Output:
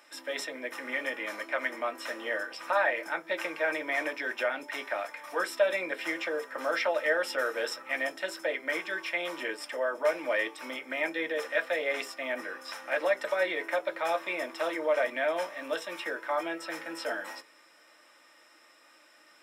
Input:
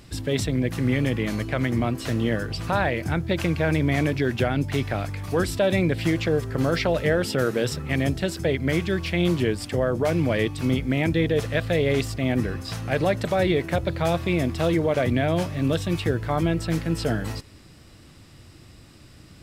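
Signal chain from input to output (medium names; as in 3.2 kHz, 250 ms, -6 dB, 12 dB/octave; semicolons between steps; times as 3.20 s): high-pass 500 Hz 24 dB/octave; reverberation RT60 0.20 s, pre-delay 3 ms, DRR 2.5 dB; trim -8 dB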